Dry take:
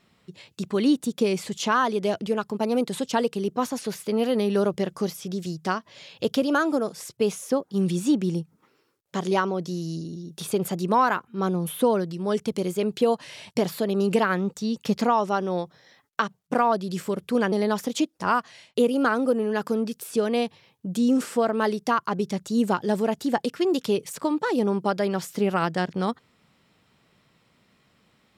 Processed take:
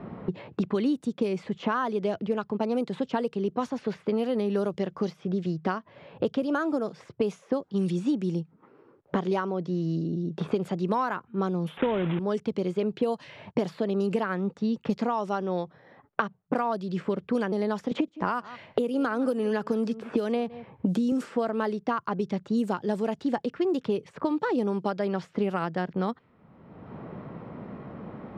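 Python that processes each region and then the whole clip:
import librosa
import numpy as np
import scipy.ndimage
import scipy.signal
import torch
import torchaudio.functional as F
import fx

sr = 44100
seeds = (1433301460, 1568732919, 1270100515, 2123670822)

y = fx.chain(x, sr, fx.block_float(bits=3),
    fx.resample_bad(factor=6, down='none', up='filtered'),
    fx.sustainer(db_per_s=21.0), at=(11.77, 12.19))
y = fx.chain(y, sr, fx.echo_single(ms=163, db=-23.0),
    fx.band_squash(depth_pct=100), at=(17.91, 21.12))
y = fx.env_lowpass(y, sr, base_hz=900.0, full_db=-17.5)
y = fx.high_shelf(y, sr, hz=2900.0, db=-8.5)
y = fx.band_squash(y, sr, depth_pct=100)
y = y * librosa.db_to_amplitude(-4.0)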